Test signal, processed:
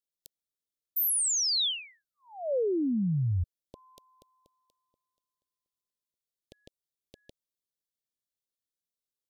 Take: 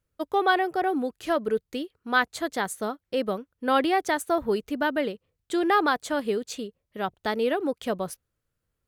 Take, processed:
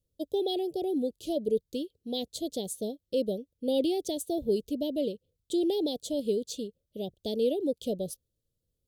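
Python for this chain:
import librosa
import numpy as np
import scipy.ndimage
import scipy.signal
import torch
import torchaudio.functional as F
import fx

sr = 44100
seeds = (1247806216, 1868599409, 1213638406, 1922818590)

y = scipy.signal.sosfilt(scipy.signal.ellip(3, 1.0, 80, [560.0, 3400.0], 'bandstop', fs=sr, output='sos'), x)
y = y * librosa.db_to_amplitude(-1.0)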